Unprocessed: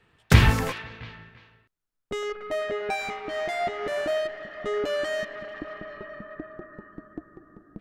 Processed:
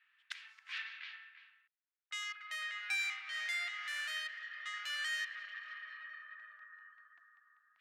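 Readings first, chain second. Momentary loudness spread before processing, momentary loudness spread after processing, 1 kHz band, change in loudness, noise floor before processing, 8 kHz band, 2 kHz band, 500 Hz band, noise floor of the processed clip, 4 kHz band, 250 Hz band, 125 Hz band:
22 LU, 17 LU, -18.5 dB, -13.0 dB, -78 dBFS, -9.0 dB, -6.0 dB, under -40 dB, under -85 dBFS, -6.0 dB, under -40 dB, under -40 dB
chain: flipped gate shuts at -14 dBFS, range -26 dB; low-pass opened by the level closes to 2300 Hz, open at -28 dBFS; inverse Chebyshev high-pass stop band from 470 Hz, stop band 60 dB; gain -1.5 dB

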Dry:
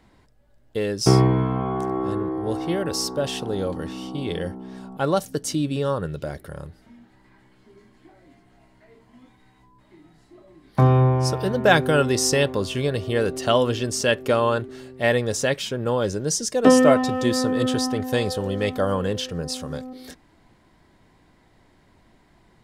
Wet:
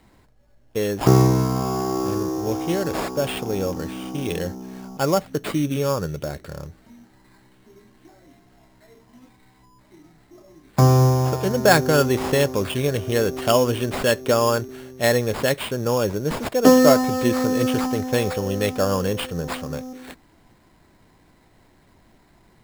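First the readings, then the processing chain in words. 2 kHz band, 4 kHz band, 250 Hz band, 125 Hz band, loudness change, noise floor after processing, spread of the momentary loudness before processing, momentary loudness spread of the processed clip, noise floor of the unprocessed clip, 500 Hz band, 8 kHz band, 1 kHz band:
0.0 dB, -1.0 dB, +1.5 dB, +1.5 dB, +1.0 dB, -57 dBFS, 14 LU, 14 LU, -58 dBFS, +1.5 dB, -1.5 dB, +1.5 dB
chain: treble ducked by the level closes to 2600 Hz, closed at -15 dBFS; sample-rate reducer 6000 Hz, jitter 0%; gain +1.5 dB

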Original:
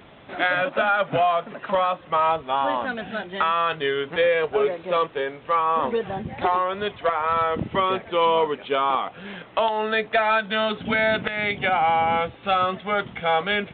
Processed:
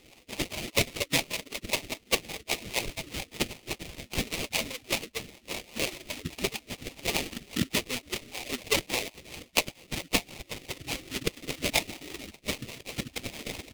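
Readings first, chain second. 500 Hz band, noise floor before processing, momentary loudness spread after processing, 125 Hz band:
-14.5 dB, -46 dBFS, 11 LU, -2.5 dB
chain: median-filter separation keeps percussive; dynamic EQ 240 Hz, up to +7 dB, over -52 dBFS, Q 2.3; sample-rate reducer 1600 Hz, jitter 20%; rotary speaker horn 5 Hz; resonant high shelf 1800 Hz +10 dB, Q 1.5; gain -2.5 dB

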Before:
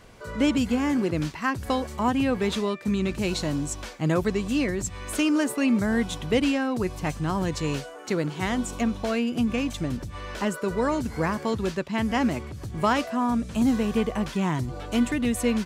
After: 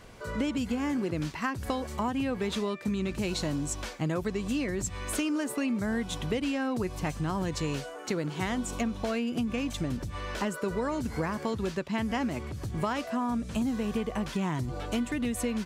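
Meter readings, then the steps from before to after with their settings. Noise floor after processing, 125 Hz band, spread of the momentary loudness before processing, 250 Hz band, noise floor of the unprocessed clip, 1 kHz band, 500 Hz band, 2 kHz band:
-41 dBFS, -4.0 dB, 7 LU, -5.5 dB, -40 dBFS, -5.5 dB, -5.5 dB, -5.5 dB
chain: compressor, threshold -27 dBFS, peak gain reduction 10 dB

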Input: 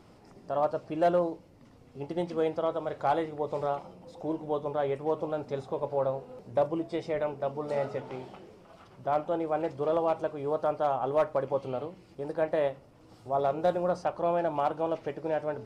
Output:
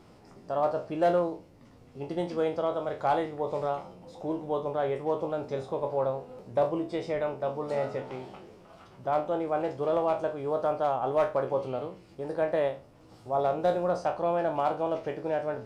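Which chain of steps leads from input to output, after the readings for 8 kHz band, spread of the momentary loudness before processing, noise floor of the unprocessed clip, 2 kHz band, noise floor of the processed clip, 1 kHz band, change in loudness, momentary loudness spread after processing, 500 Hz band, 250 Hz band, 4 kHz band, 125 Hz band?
n/a, 10 LU, -56 dBFS, +1.5 dB, -55 dBFS, +1.0 dB, +1.0 dB, 10 LU, +1.0 dB, +0.5 dB, +1.5 dB, +0.5 dB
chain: spectral trails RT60 0.31 s

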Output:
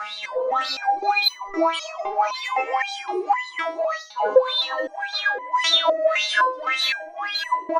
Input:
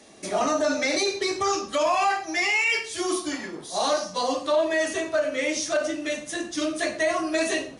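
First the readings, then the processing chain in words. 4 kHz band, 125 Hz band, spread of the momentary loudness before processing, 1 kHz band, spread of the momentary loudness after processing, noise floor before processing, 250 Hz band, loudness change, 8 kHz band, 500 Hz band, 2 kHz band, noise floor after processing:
+7.5 dB, n/a, 7 LU, +6.0 dB, 9 LU, -41 dBFS, -6.5 dB, +3.0 dB, -8.5 dB, +1.0 dB, +2.5 dB, -40 dBFS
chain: LPF 7900 Hz 12 dB/oct; on a send: split-band echo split 1600 Hz, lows 0.412 s, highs 0.6 s, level -12 dB; on the sum: upward compressor, threshold -38 dBFS; low shelf 250 Hz -6 dB; wah 1.8 Hz 390–4000 Hz, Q 13; soft clip -31.5 dBFS, distortion -13 dB; bell 950 Hz +13.5 dB 0.74 oct; comb 6.1 ms, depth 96%; reverse; compressor 12:1, threshold -38 dBFS, peak gain reduction 21 dB; reverse; maximiser +35 dB; stepped resonator 3.9 Hz 210–1000 Hz; gain +3.5 dB

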